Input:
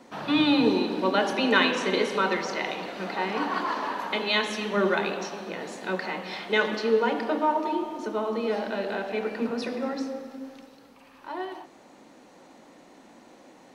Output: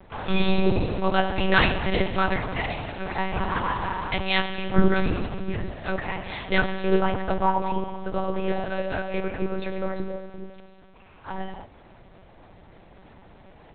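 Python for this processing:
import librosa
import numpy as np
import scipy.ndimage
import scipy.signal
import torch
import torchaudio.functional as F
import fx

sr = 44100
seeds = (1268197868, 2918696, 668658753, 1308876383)

y = fx.low_shelf_res(x, sr, hz=360.0, db=8.0, q=3.0, at=(4.77, 5.71))
y = fx.lpc_monotone(y, sr, seeds[0], pitch_hz=190.0, order=8)
y = y * 10.0 ** (2.5 / 20.0)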